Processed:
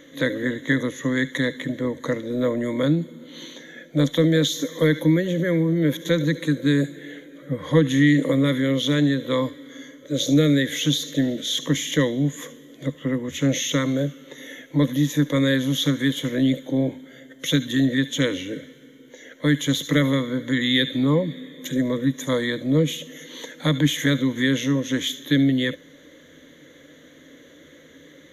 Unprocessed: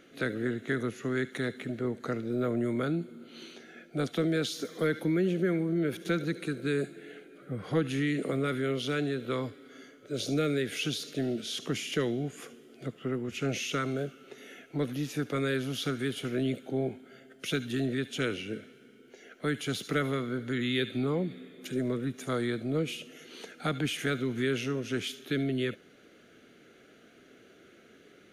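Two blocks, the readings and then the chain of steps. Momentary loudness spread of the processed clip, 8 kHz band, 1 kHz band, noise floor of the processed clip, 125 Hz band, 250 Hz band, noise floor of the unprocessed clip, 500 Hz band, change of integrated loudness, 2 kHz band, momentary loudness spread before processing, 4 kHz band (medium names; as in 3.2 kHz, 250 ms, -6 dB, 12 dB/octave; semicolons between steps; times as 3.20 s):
14 LU, +11.5 dB, +4.0 dB, -49 dBFS, +11.0 dB, +11.0 dB, -58 dBFS, +7.0 dB, +10.0 dB, +8.5 dB, 13 LU, +11.0 dB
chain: rippled EQ curve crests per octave 1.1, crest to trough 15 dB; trim +6.5 dB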